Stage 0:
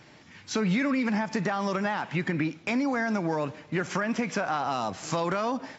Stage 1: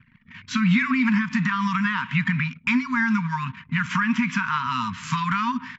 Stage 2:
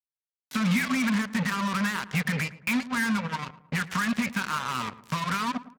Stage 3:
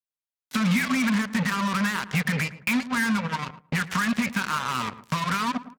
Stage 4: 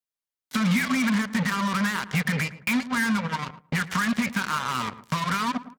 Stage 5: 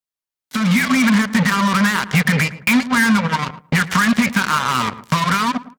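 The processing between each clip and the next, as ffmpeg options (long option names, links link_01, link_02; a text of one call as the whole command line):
ffmpeg -i in.wav -af "highshelf=frequency=3900:width_type=q:width=1.5:gain=-7,afftfilt=real='re*(1-between(b*sr/4096,260,910))':imag='im*(1-between(b*sr/4096,260,910))':win_size=4096:overlap=0.75,anlmdn=0.00631,volume=7dB" out.wav
ffmpeg -i in.wav -filter_complex "[0:a]acrusher=bits=3:mix=0:aa=0.5,highpass=61,asplit=2[link_01][link_02];[link_02]adelay=110,lowpass=frequency=1300:poles=1,volume=-15dB,asplit=2[link_03][link_04];[link_04]adelay=110,lowpass=frequency=1300:poles=1,volume=0.46,asplit=2[link_05][link_06];[link_06]adelay=110,lowpass=frequency=1300:poles=1,volume=0.46,asplit=2[link_07][link_08];[link_08]adelay=110,lowpass=frequency=1300:poles=1,volume=0.46[link_09];[link_01][link_03][link_05][link_07][link_09]amix=inputs=5:normalize=0,volume=-5dB" out.wav
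ffmpeg -i in.wav -filter_complex "[0:a]agate=range=-10dB:threshold=-46dB:ratio=16:detection=peak,asplit=2[link_01][link_02];[link_02]acompressor=threshold=-35dB:ratio=6,volume=0dB[link_03];[link_01][link_03]amix=inputs=2:normalize=0" out.wav
ffmpeg -i in.wav -af "bandreject=frequency=2600:width=21" out.wav
ffmpeg -i in.wav -af "dynaudnorm=framelen=260:gausssize=5:maxgain=10.5dB" out.wav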